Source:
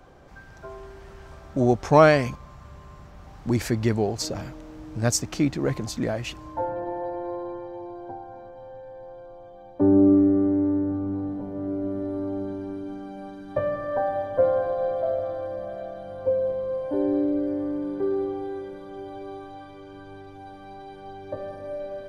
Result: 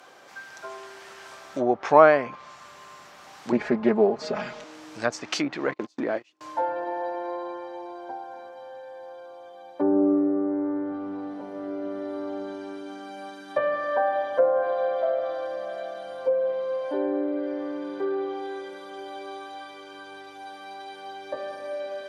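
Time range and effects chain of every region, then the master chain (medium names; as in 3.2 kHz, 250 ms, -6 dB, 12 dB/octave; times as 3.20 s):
3.52–4.64 s: bass shelf 250 Hz +10.5 dB + comb 4.8 ms, depth 94% + loudspeaker Doppler distortion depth 0.18 ms
5.71–6.41 s: peaking EQ 320 Hz +11 dB 1.4 oct + gate -24 dBFS, range -37 dB + compression 4:1, threshold -20 dBFS
whole clip: low-pass that closes with the level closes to 1.1 kHz, closed at -17.5 dBFS; high-pass 290 Hz 12 dB/octave; tilt shelf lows -7.5 dB, about 930 Hz; trim +4 dB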